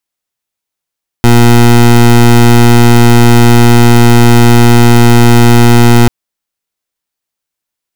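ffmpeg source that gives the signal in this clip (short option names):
-f lavfi -i "aevalsrc='0.708*(2*lt(mod(119*t,1),0.21)-1)':d=4.84:s=44100"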